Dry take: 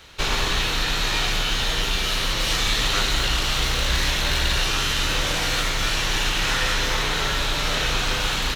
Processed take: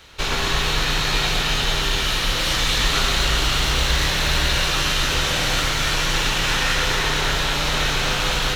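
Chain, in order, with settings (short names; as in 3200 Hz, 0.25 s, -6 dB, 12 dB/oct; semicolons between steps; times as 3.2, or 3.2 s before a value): echo with dull and thin repeats by turns 0.113 s, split 2000 Hz, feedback 81%, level -3 dB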